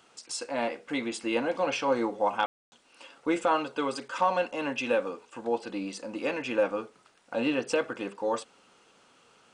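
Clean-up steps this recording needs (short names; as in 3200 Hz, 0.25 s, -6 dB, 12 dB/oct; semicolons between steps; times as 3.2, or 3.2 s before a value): room tone fill 2.46–2.72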